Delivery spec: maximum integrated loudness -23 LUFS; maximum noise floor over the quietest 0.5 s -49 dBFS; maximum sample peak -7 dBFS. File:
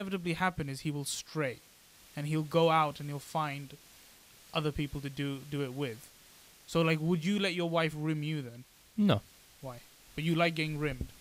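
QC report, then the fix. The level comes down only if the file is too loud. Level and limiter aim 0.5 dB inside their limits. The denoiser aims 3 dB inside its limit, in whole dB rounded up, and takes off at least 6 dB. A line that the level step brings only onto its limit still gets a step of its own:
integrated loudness -33.0 LUFS: pass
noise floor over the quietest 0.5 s -59 dBFS: pass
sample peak -13.0 dBFS: pass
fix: none needed

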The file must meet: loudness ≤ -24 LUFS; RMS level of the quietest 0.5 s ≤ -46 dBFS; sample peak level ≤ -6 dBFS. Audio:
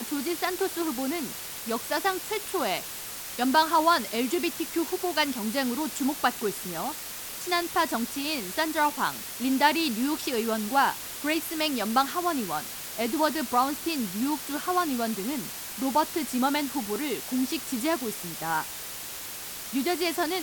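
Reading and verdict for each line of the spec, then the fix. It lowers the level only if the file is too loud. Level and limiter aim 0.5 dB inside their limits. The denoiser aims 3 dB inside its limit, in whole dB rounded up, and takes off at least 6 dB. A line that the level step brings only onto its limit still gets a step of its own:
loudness -27.5 LUFS: pass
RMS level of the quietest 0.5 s -38 dBFS: fail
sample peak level -7.5 dBFS: pass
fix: noise reduction 11 dB, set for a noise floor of -38 dBFS

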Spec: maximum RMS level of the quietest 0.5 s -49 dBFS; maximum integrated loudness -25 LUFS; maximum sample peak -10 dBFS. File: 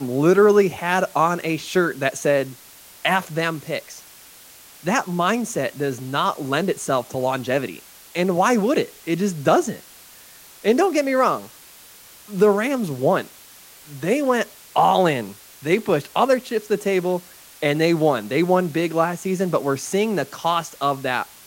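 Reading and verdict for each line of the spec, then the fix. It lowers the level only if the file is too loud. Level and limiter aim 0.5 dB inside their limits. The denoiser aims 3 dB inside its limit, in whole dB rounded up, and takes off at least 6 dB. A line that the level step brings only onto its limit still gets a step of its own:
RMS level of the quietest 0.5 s -46 dBFS: fail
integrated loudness -21.0 LUFS: fail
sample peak -5.0 dBFS: fail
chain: trim -4.5 dB; peak limiter -10.5 dBFS

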